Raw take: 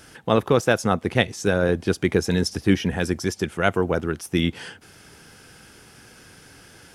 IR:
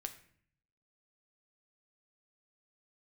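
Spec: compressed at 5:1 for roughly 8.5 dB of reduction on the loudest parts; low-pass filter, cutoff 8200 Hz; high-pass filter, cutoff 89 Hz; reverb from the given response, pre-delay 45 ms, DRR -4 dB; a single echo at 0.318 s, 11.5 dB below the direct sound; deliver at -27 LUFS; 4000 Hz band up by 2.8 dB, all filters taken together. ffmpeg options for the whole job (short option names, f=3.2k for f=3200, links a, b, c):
-filter_complex "[0:a]highpass=89,lowpass=8.2k,equalizer=f=4k:t=o:g=4,acompressor=threshold=-22dB:ratio=5,aecho=1:1:318:0.266,asplit=2[a][b];[1:a]atrim=start_sample=2205,adelay=45[c];[b][c]afir=irnorm=-1:irlink=0,volume=6.5dB[d];[a][d]amix=inputs=2:normalize=0,volume=-4dB"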